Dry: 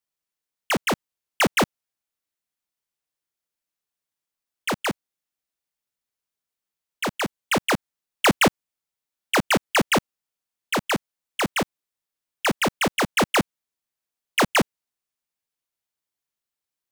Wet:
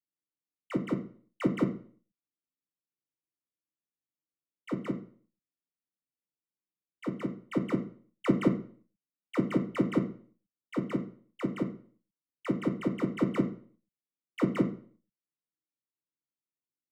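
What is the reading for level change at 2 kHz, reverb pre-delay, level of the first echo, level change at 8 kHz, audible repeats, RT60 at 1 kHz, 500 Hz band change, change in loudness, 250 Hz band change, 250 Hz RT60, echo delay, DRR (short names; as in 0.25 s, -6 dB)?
-20.5 dB, 3 ms, none, under -25 dB, none, 0.45 s, -8.5 dB, -9.0 dB, -2.0 dB, 0.45 s, none, 4.5 dB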